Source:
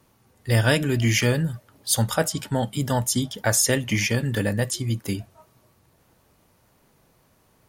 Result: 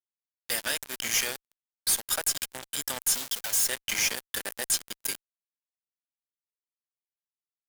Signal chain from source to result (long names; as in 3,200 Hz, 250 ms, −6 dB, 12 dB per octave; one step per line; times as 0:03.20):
0:03.14–0:03.67: each half-wave held at its own peak
mains-hum notches 60/120/180/240/300/360/420 Hz
downward compressor 12 to 1, threshold −21 dBFS, peak gain reduction 9.5 dB
high-pass filter 170 Hz 12 dB per octave
steady tone 1,600 Hz −40 dBFS
spectral tilt +4.5 dB per octave
fuzz pedal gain 27 dB, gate −24 dBFS
level −7.5 dB